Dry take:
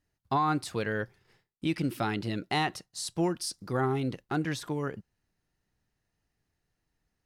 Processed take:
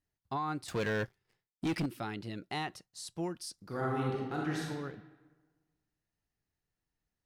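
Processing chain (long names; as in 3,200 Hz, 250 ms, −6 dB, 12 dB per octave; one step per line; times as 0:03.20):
0:00.68–0:01.86: leveller curve on the samples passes 3
0:03.65–0:04.68: thrown reverb, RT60 1.4 s, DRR −3.5 dB
level −8.5 dB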